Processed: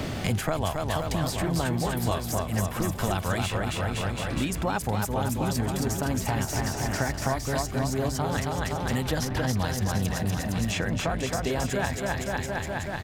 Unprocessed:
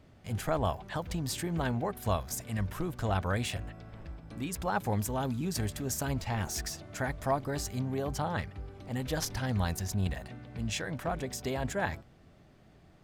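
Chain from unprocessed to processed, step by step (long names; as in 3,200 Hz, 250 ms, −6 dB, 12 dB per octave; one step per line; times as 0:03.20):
bouncing-ball delay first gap 270 ms, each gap 0.9×, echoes 5
multiband upward and downward compressor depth 100%
level +3 dB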